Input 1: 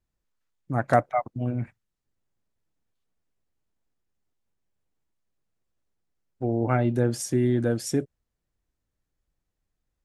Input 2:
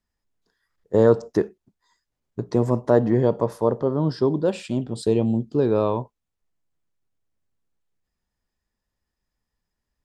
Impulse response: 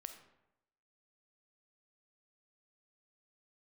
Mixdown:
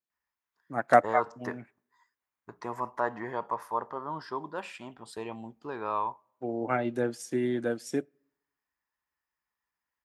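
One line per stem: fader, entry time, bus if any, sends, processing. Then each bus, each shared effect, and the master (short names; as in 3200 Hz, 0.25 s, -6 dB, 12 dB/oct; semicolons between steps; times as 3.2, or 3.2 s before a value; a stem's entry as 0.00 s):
+2.5 dB, 0.00 s, send -22.5 dB, HPF 190 Hz 12 dB/oct; high shelf 5400 Hz -10.5 dB; upward expander 1.5:1, over -42 dBFS
-8.0 dB, 0.10 s, send -19 dB, graphic EQ 125/250/500/1000/2000/4000/8000 Hz -11/-6/-9/+10/+6/-8/-9 dB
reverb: on, RT60 0.90 s, pre-delay 5 ms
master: HPF 56 Hz; tilt +2 dB/oct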